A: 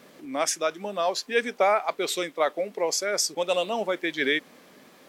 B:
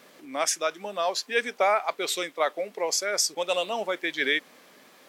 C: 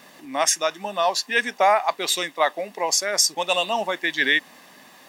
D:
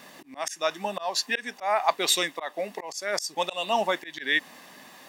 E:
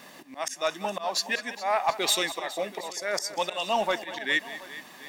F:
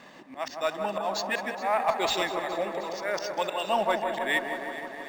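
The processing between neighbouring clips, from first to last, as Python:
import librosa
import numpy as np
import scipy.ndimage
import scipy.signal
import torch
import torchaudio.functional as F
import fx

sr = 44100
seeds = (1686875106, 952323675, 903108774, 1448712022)

y1 = fx.low_shelf(x, sr, hz=390.0, db=-9.5)
y1 = y1 * librosa.db_to_amplitude(1.0)
y2 = y1 + 0.52 * np.pad(y1, (int(1.1 * sr / 1000.0), 0))[:len(y1)]
y2 = y2 * librosa.db_to_amplitude(5.0)
y3 = fx.auto_swell(y2, sr, attack_ms=251.0)
y4 = 10.0 ** (-15.0 / 20.0) * np.tanh(y3 / 10.0 ** (-15.0 / 20.0))
y4 = fx.echo_multitap(y4, sr, ms=(195, 417, 728), db=(-15.0, -16.5, -19.5))
y5 = fx.air_absorb(y4, sr, metres=60.0)
y5 = fx.echo_wet_lowpass(y5, sr, ms=159, feedback_pct=76, hz=1400.0, wet_db=-5.5)
y5 = np.interp(np.arange(len(y5)), np.arange(len(y5))[::4], y5[::4])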